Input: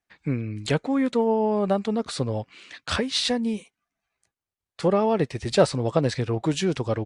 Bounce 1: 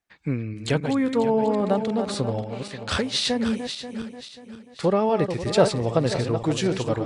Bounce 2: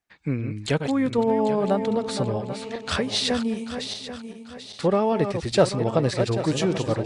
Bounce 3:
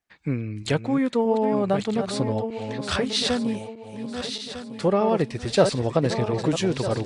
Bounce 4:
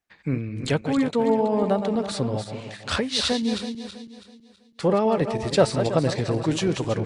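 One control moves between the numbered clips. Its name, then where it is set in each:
backward echo that repeats, time: 268 ms, 394 ms, 626 ms, 163 ms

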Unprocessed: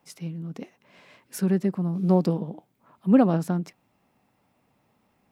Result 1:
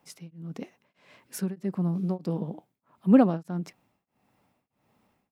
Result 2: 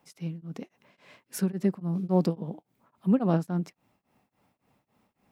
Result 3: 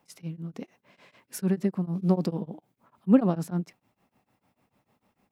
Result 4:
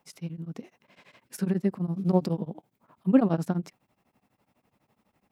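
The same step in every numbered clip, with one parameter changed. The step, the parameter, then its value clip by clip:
tremolo of two beating tones, nulls at: 1.6 Hz, 3.6 Hz, 6.7 Hz, 12 Hz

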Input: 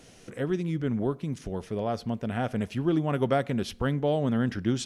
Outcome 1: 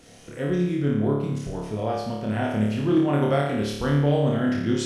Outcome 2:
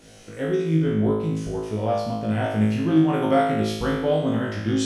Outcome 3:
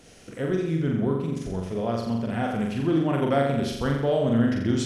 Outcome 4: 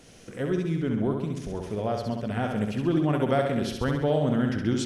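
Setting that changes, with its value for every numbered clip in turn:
flutter echo, walls apart: 4.8 m, 3.2 m, 7.4 m, 11.4 m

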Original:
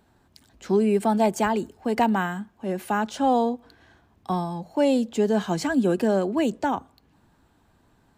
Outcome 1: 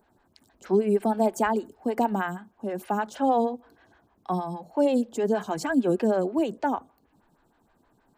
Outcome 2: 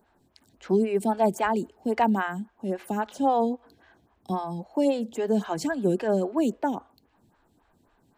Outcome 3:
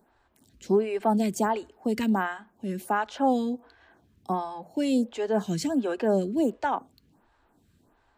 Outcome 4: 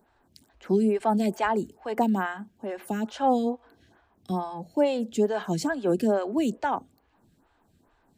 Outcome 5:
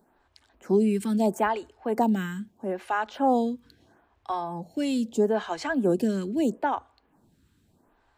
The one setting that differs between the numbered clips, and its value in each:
lamp-driven phase shifter, rate: 6.4 Hz, 3.7 Hz, 1.4 Hz, 2.3 Hz, 0.77 Hz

